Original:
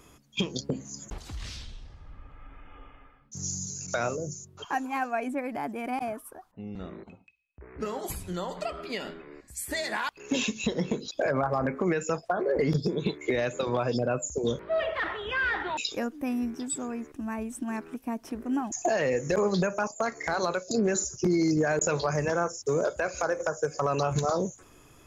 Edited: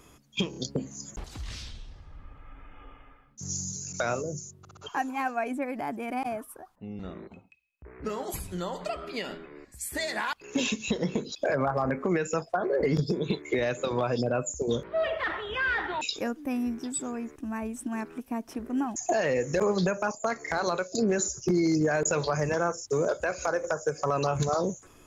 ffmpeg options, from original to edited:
-filter_complex "[0:a]asplit=6[s0][s1][s2][s3][s4][s5];[s0]atrim=end=0.532[s6];[s1]atrim=start=0.498:end=0.532[s7];[s2]atrim=start=0.498:end=4.592[s8];[s3]atrim=start=4.528:end=4.592[s9];[s4]atrim=start=4.528:end=4.592[s10];[s5]atrim=start=4.528[s11];[s6][s7]acrossfade=d=0.004:c1=hsin:c2=hsin[s12];[s12][s8]acrossfade=d=0.004:c1=hsin:c2=hsin[s13];[s13][s9]acrossfade=d=0.004:c1=hsin:c2=hsin[s14];[s14][s10]acrossfade=d=0.004:c1=hsin:c2=hsin[s15];[s15][s11]acrossfade=d=0.004:c1=hsin:c2=hsin"

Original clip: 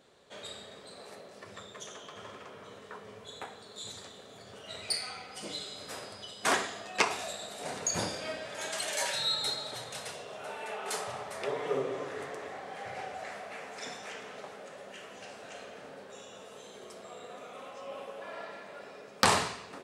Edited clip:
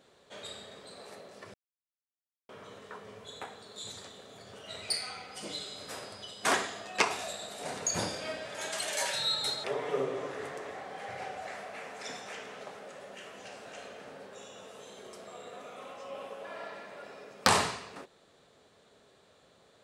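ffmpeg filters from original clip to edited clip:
-filter_complex "[0:a]asplit=4[s0][s1][s2][s3];[s0]atrim=end=1.54,asetpts=PTS-STARTPTS,afade=t=out:st=1.536:d=0.004:c=hsin[s4];[s1]atrim=start=1.54:end=2.49,asetpts=PTS-STARTPTS,volume=0[s5];[s2]atrim=start=2.49:end=9.642,asetpts=PTS-STARTPTS,afade=t=in:d=0.004:c=hsin[s6];[s3]atrim=start=11.408[s7];[s4][s5][s6]concat=n=3:v=0:a=1[s8];[s8][s7]acrossfade=d=0.004:c1=hsin:c2=hsin"

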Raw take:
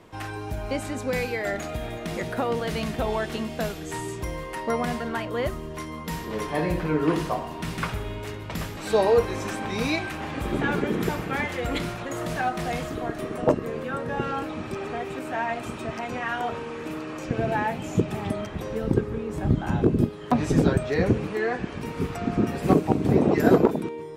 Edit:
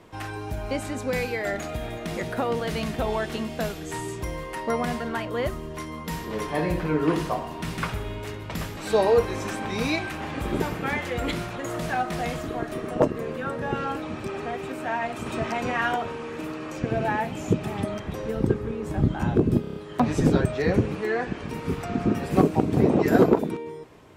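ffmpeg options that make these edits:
-filter_complex "[0:a]asplit=9[s0][s1][s2][s3][s4][s5][s6][s7][s8];[s0]atrim=end=10.602[s9];[s1]atrim=start=11.068:end=15.732[s10];[s2]atrim=start=15.728:end=16.432,asetpts=PTS-STARTPTS,volume=1.58[s11];[s3]atrim=start=16.428:end=20.112[s12];[s4]atrim=start=20.078:end=20.112[s13];[s5]atrim=start=20.078:end=20.112[s14];[s6]atrim=start=20.078:end=20.112[s15];[s7]atrim=start=20.078:end=20.112[s16];[s8]atrim=start=20.078[s17];[s9][s10]acrossfade=d=0.004:c1=hsin:c2=hsin[s18];[s18][s11]acrossfade=d=0.004:c1=hsin:c2=hsin[s19];[s19][s12]acrossfade=d=0.004:c1=hsin:c2=hsin[s20];[s20][s13]acrossfade=d=0.004:c1=hsin:c2=hsin[s21];[s21][s14]acrossfade=d=0.004:c1=hsin:c2=hsin[s22];[s22][s15]acrossfade=d=0.004:c1=hsin:c2=hsin[s23];[s23][s16]acrossfade=d=0.004:c1=hsin:c2=hsin[s24];[s24][s17]acrossfade=d=0.004:c1=hsin:c2=hsin"

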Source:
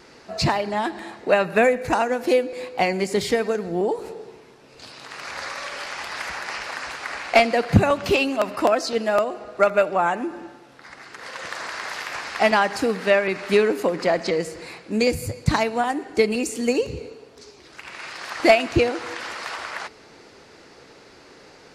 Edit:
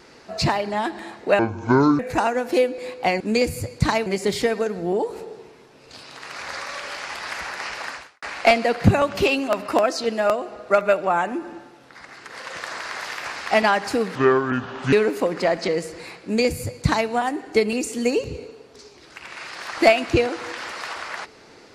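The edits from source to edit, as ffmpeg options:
-filter_complex "[0:a]asplit=8[s0][s1][s2][s3][s4][s5][s6][s7];[s0]atrim=end=1.394[s8];[s1]atrim=start=1.39:end=1.74,asetpts=PTS-STARTPTS,asetrate=25578,aresample=44100,atrim=end_sample=26612,asetpts=PTS-STARTPTS[s9];[s2]atrim=start=1.736:end=2.952[s10];[s3]atrim=start=14.858:end=15.722[s11];[s4]atrim=start=2.948:end=7.11,asetpts=PTS-STARTPTS,afade=t=out:st=3.842:d=0.32:c=qua[s12];[s5]atrim=start=7.11:end=13.044,asetpts=PTS-STARTPTS,afade=t=in:d=0.004:c=hsin[s13];[s6]atrim=start=13.04:end=13.55,asetpts=PTS-STARTPTS,asetrate=29106,aresample=44100,atrim=end_sample=34077,asetpts=PTS-STARTPTS[s14];[s7]atrim=start=13.546[s15];[s8][s9]acrossfade=d=0.004:c1=hsin:c2=hsin[s16];[s16][s10]acrossfade=d=0.004:c1=hsin:c2=hsin[s17];[s17][s11]acrossfade=d=0.004:c1=hsin:c2=hsin[s18];[s12][s13]concat=n=2:v=0:a=1[s19];[s18][s19]acrossfade=d=0.004:c1=hsin:c2=hsin[s20];[s20][s14]acrossfade=d=0.004:c1=hsin:c2=hsin[s21];[s21][s15]acrossfade=d=0.004:c1=hsin:c2=hsin"

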